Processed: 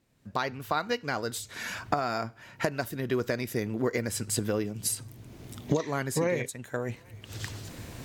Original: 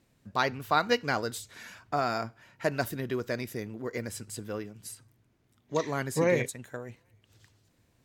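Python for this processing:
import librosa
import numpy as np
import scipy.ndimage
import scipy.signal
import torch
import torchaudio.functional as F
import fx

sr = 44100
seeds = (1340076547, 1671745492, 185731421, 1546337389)

y = fx.recorder_agc(x, sr, target_db=-13.5, rise_db_per_s=25.0, max_gain_db=30)
y = fx.peak_eq(y, sr, hz=1500.0, db=-5.5, octaves=1.3, at=(4.51, 5.8))
y = F.gain(torch.from_numpy(y), -4.5).numpy()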